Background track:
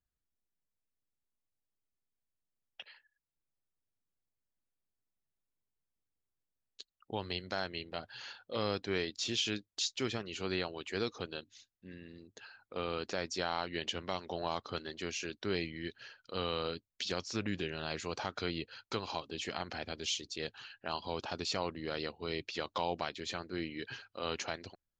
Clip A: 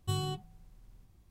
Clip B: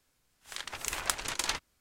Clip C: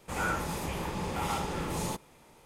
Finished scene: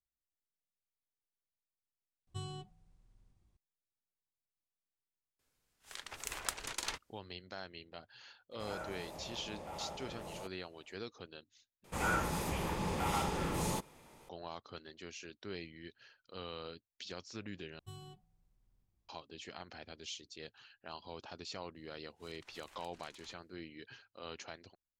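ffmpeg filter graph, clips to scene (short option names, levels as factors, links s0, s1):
-filter_complex "[1:a]asplit=2[s0][s1];[2:a]asplit=2[s2][s3];[3:a]asplit=2[s4][s5];[0:a]volume=0.335[s6];[s0]aresample=22050,aresample=44100[s7];[s2]equalizer=f=440:t=o:w=0.29:g=3.5[s8];[s4]equalizer=f=630:w=2.4:g=13.5[s9];[s3]acompressor=threshold=0.0158:ratio=3:attack=0.2:release=108:knee=1:detection=rms[s10];[s6]asplit=4[s11][s12][s13][s14];[s11]atrim=end=2.274[s15];[s7]atrim=end=1.3,asetpts=PTS-STARTPTS,volume=0.299[s16];[s12]atrim=start=3.566:end=11.844[s17];[s5]atrim=end=2.45,asetpts=PTS-STARTPTS,volume=0.794[s18];[s13]atrim=start=14.286:end=17.794[s19];[s1]atrim=end=1.3,asetpts=PTS-STARTPTS,volume=0.133[s20];[s14]atrim=start=19.086[s21];[s8]atrim=end=1.8,asetpts=PTS-STARTPTS,volume=0.422,afade=t=in:d=0.004:c=hsin,afade=t=out:st=1.796:d=0.004:c=hsin,adelay=5390[s22];[s9]atrim=end=2.45,asetpts=PTS-STARTPTS,volume=0.141,afade=t=in:d=0.004:c=hsin,afade=t=out:st=2.446:d=0.004:c=hsin,adelay=8510[s23];[s10]atrim=end=1.8,asetpts=PTS-STARTPTS,volume=0.158,afade=t=in:d=0.004:c=hsin,afade=t=out:st=1.796:d=0.004:c=hsin,adelay=21750[s24];[s15][s16]acrossfade=d=0.004:c1=hsin:c2=hsin[s25];[s25][s17]acrossfade=d=0.004:c1=hsin:c2=hsin[s26];[s26][s18]acrossfade=d=0.004:c1=hsin:c2=hsin[s27];[s27][s19]acrossfade=d=0.004:c1=hsin:c2=hsin[s28];[s28][s20]acrossfade=d=0.004:c1=hsin:c2=hsin[s29];[s29][s21]acrossfade=d=0.004:c1=hsin:c2=hsin[s30];[s30][s22][s23][s24]amix=inputs=4:normalize=0"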